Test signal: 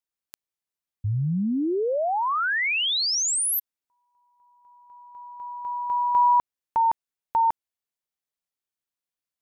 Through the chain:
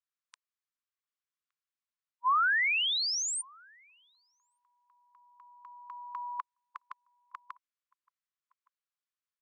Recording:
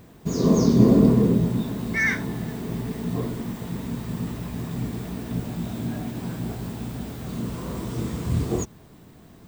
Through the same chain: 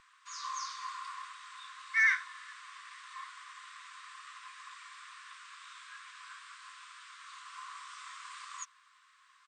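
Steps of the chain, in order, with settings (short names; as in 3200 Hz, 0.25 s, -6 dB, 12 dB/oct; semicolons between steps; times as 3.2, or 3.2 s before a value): brick-wall FIR band-pass 1000–9100 Hz; tilt -3 dB/oct; outdoor echo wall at 200 m, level -26 dB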